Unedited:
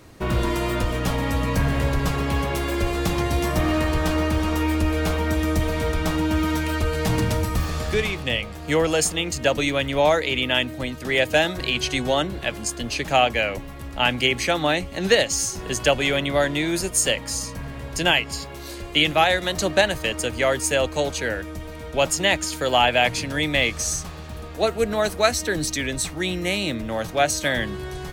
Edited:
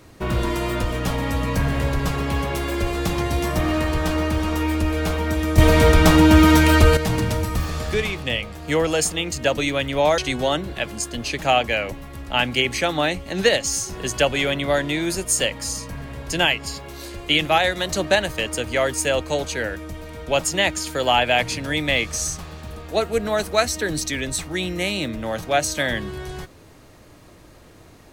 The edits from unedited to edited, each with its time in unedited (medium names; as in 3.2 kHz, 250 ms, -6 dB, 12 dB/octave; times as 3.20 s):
5.58–6.97 s: gain +10 dB
10.18–11.84 s: delete